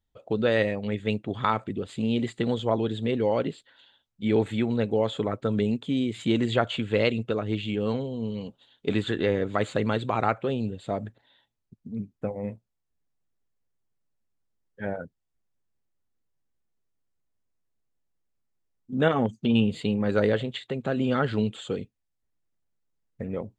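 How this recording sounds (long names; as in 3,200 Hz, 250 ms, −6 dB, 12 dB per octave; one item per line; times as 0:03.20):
background noise floor −79 dBFS
spectral slope −5.5 dB per octave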